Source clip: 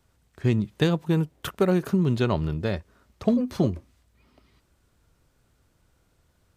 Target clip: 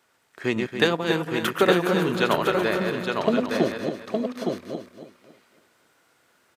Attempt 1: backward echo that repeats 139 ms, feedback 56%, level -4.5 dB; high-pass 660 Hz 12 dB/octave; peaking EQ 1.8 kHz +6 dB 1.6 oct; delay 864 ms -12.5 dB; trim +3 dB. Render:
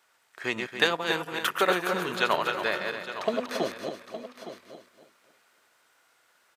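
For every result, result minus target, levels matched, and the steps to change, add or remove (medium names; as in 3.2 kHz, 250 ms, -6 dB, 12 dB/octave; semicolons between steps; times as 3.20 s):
250 Hz band -7.0 dB; echo-to-direct -8 dB
change: high-pass 330 Hz 12 dB/octave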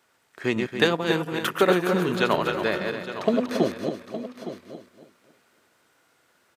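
echo-to-direct -8 dB
change: delay 864 ms -4.5 dB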